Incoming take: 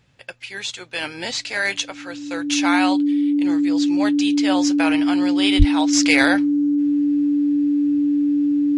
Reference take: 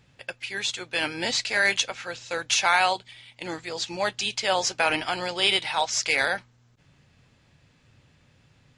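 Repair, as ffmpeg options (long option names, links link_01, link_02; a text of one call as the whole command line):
ffmpeg -i in.wav -filter_complex "[0:a]bandreject=frequency=290:width=30,asplit=3[link_01][link_02][link_03];[link_01]afade=type=out:start_time=5.58:duration=0.02[link_04];[link_02]highpass=frequency=140:width=0.5412,highpass=frequency=140:width=1.3066,afade=type=in:start_time=5.58:duration=0.02,afade=type=out:start_time=5.7:duration=0.02[link_05];[link_03]afade=type=in:start_time=5.7:duration=0.02[link_06];[link_04][link_05][link_06]amix=inputs=3:normalize=0,asetnsamples=nb_out_samples=441:pad=0,asendcmd='5.93 volume volume -6.5dB',volume=0dB" out.wav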